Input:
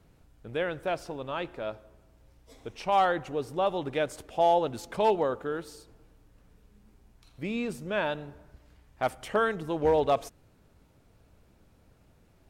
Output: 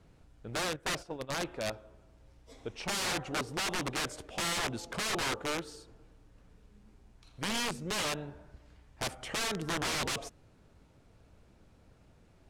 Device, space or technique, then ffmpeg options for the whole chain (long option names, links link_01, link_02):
overflowing digital effects unit: -filter_complex "[0:a]asettb=1/sr,asplit=3[link_01][link_02][link_03];[link_01]atrim=end=0.764[link_04];[link_02]atrim=start=0.76:end=1.46,asetpts=PTS-STARTPTS,afade=type=in:duration=0.004:curve=qsin,afade=type=out:start_time=0.696:duration=0.004:curve=qsin,agate=range=-11dB:threshold=-36dB:ratio=16:detection=peak[link_05];[link_03]atrim=start=1.456[link_06];[link_04][link_05]acrossfade=duration=0.004:curve1=hsin:curve2=qsin[link_07];[link_07][link_06]acrossfade=duration=0.004:curve1=qsin:curve2=hsin,aeval=exprs='(mod(22.4*val(0)+1,2)-1)/22.4':channel_layout=same,lowpass=9100"